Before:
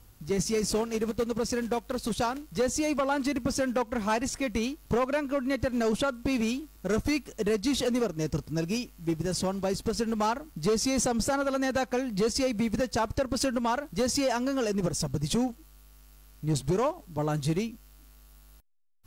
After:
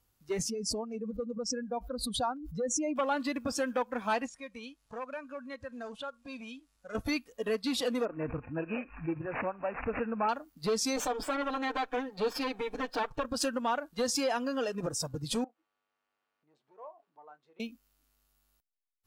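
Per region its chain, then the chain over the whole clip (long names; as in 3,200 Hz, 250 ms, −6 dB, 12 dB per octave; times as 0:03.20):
0:00.50–0:02.96: expanding power law on the bin magnitudes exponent 1.6 + parametric band 450 Hz −7 dB 0.26 octaves + background raised ahead of every attack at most 54 dB per second
0:04.26–0:06.95: Butterworth low-pass 11,000 Hz + downward compressor 1.5 to 1, threshold −46 dBFS + parametric band 350 Hz −10 dB 0.56 octaves
0:08.05–0:10.29: bad sample-rate conversion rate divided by 8×, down none, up filtered + background raised ahead of every attack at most 93 dB per second
0:10.96–0:13.25: lower of the sound and its delayed copy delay 6.6 ms + high-shelf EQ 9,700 Hz −11 dB
0:15.44–0:17.60: downward compressor 3 to 1, threshold −45 dBFS + band-pass filter 430–2,100 Hz + double-tracking delay 27 ms −13 dB
whole clip: noise reduction from a noise print of the clip's start 13 dB; low-shelf EQ 250 Hz −8 dB; level −1.5 dB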